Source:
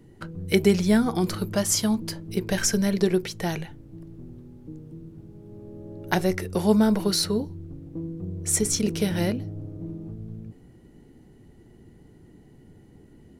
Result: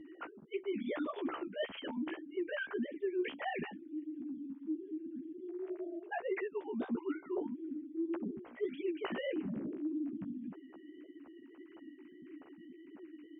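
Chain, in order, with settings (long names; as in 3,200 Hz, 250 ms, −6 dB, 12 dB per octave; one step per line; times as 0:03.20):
three sine waves on the formant tracks
reversed playback
downward compressor 16 to 1, threshold −35 dBFS, peak gain reduction 26 dB
reversed playback
flanger 1.7 Hz, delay 9.2 ms, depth 8.2 ms, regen +5%
level +3.5 dB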